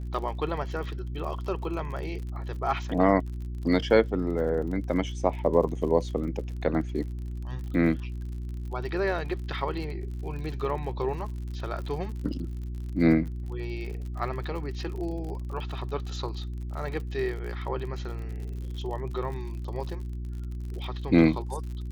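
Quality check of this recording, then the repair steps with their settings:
crackle 51 per s -37 dBFS
hum 60 Hz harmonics 6 -34 dBFS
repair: de-click; de-hum 60 Hz, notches 6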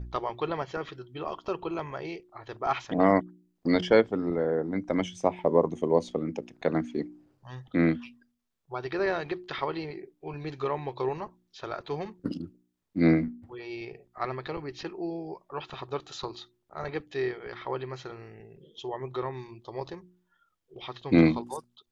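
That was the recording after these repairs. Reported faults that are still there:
nothing left

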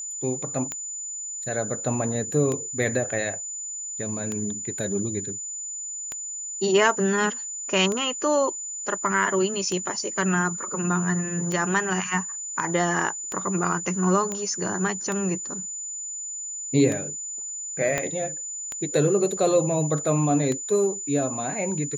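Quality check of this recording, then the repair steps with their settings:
tick 33 1/3 rpm -15 dBFS
whine 7 kHz -31 dBFS
14.32 s: pop -16 dBFS
17.98 s: pop -10 dBFS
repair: de-click; band-stop 7 kHz, Q 30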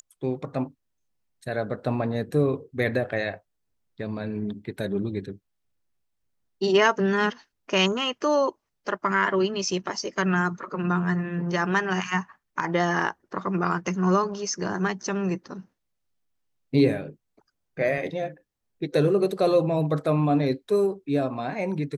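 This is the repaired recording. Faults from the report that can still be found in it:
14.32 s: pop
17.98 s: pop

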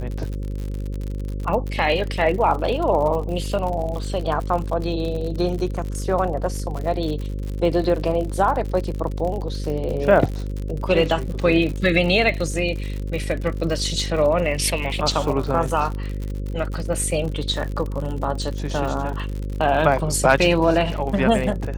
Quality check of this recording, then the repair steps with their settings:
buzz 50 Hz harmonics 11 -27 dBFS
crackle 58 per s -27 dBFS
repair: de-click; de-hum 50 Hz, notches 11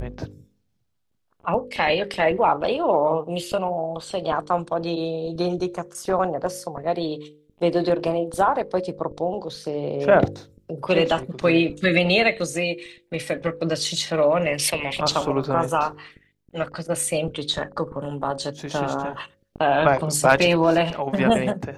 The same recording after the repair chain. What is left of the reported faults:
nothing left

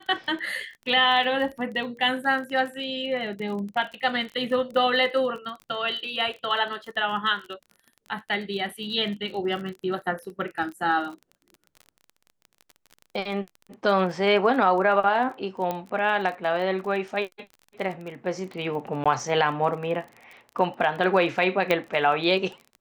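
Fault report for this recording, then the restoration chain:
crackle 27 per s -34 dBFS
15.71 s: pop -15 dBFS
19.04–19.06 s: dropout 16 ms
21.71 s: pop -10 dBFS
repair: de-click; interpolate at 19.04 s, 16 ms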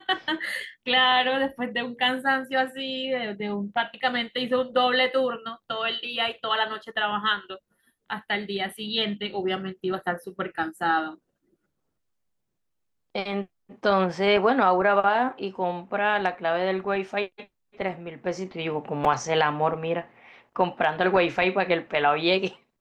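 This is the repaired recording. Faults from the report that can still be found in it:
nothing left

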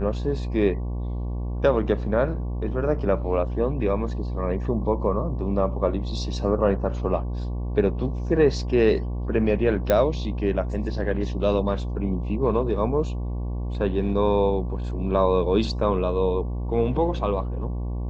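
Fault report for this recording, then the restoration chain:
buzz 60 Hz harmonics 19 -28 dBFS
9.90 s: pop -8 dBFS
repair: de-click; de-hum 60 Hz, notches 19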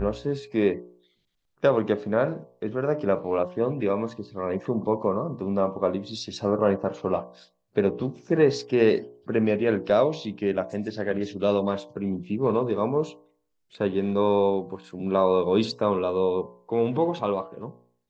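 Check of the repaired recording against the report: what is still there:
9.90 s: pop

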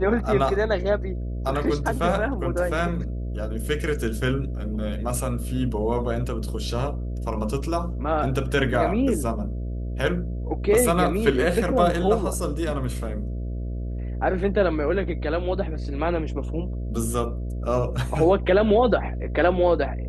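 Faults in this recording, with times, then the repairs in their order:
buzz 60 Hz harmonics 11 -29 dBFS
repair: de-hum 60 Hz, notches 11

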